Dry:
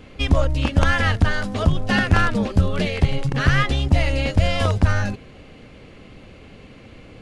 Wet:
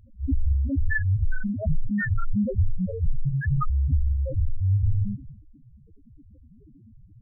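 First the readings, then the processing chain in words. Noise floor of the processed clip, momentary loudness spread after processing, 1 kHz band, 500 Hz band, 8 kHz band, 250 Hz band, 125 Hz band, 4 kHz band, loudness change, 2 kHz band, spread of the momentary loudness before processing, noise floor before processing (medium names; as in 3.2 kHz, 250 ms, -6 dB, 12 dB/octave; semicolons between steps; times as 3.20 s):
-53 dBFS, 5 LU, -15.0 dB, -12.5 dB, under -40 dB, -5.5 dB, -4.5 dB, under -40 dB, -6.0 dB, -10.5 dB, 3 LU, -44 dBFS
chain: transient shaper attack -6 dB, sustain +10 dB; loudest bins only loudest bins 2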